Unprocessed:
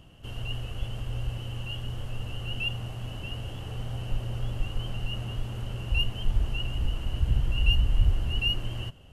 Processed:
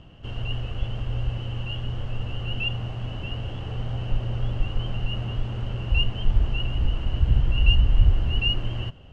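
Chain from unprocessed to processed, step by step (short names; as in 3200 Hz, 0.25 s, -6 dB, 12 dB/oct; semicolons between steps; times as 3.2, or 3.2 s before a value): air absorption 150 m; gain +5 dB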